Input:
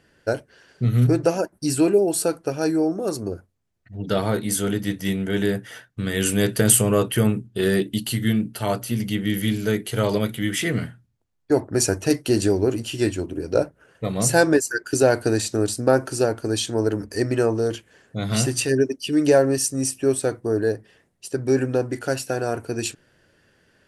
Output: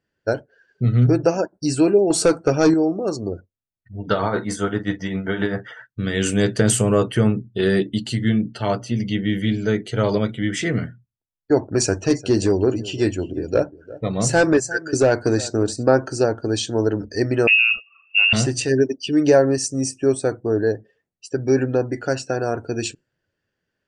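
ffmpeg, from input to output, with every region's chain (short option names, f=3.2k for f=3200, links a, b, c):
-filter_complex "[0:a]asettb=1/sr,asplit=3[a][b][c];[a]atrim=end=2.104[d];[b]atrim=start=2.1:end=2.74,asetpts=PTS-STARTPTS,afade=t=in:d=0.004:c=qsin,afade=t=out:st=0.636:d=0.004:c=qsin,asoftclip=type=hard:threshold=-18dB,bandreject=f=1.7k:w=19,acontrast=82[e];[c]atrim=start=2.736[f];[d][e]acrossfade=d=0.004:c1=hsin:c2=qsin[g];[g][f]acrossfade=d=0.004:c1=qsin:c2=hsin,asettb=1/sr,asplit=3[h][i][j];[h]atrim=end=3.984[k];[i]atrim=start=3.98:end=5.87,asetpts=PTS-STARTPTS,afade=t=in:d=0.004:c=qsin,afade=t=out:st=1.886:d=0.004:c=qsin,equalizer=f=1.1k:w=1.1:g=9.5,tremolo=f=7.6:d=0.65,asplit=2[l][m];[m]adelay=43,volume=-12.5dB[n];[l][n]amix=inputs=2:normalize=0,atrim=end_sample=83349[o];[j]atrim=start=5.866[p];[k][o]acrossfade=d=0.004:c1=hsin:c2=qsin[q];[q][p]acrossfade=d=0.004:c1=qsin:c2=hsin,asettb=1/sr,asplit=3[r][s][t];[r]atrim=end=11.654[u];[s]atrim=start=11.65:end=15.88,asetpts=PTS-STARTPTS,afade=t=in:d=0.004:c=qsin,afade=t=out:st=4.226:d=0.004:c=qsin,asoftclip=type=hard:threshold=-11dB,aecho=1:1:350:0.126,atrim=end_sample=186543[v];[t]atrim=start=15.876[w];[u][v]acrossfade=d=0.004:c1=hsin:c2=qsin[x];[x][w]acrossfade=d=0.004:c1=qsin:c2=hsin,asettb=1/sr,asplit=3[y][z][aa];[y]atrim=end=17.474[ab];[z]atrim=start=17.47:end=18.33,asetpts=PTS-STARTPTS,afade=t=in:d=0.004:c=qsin,afade=t=out:st=0.856:d=0.004:c=qsin,lowshelf=f=400:t=q:w=3:g=8,lowpass=f=2.5k:t=q:w=0.5098,lowpass=f=2.5k:t=q:w=0.6013,lowpass=f=2.5k:t=q:w=0.9,lowpass=f=2.5k:t=q:w=2.563,afreqshift=-2900[ac];[aa]atrim=start=18.326[ad];[ab][ac]acrossfade=d=0.004:c1=hsin:c2=qsin[ae];[ae][ad]acrossfade=d=0.004:c1=qsin:c2=hsin,lowpass=f=7.5k:w=0.5412,lowpass=f=7.5k:w=1.3066,afftdn=nr=20:nf=-44,adynamicequalizer=threshold=0.00631:dfrequency=3000:dqfactor=1.5:tfrequency=3000:tqfactor=1.5:attack=5:release=100:ratio=0.375:range=2.5:mode=cutabove:tftype=bell,volume=2dB"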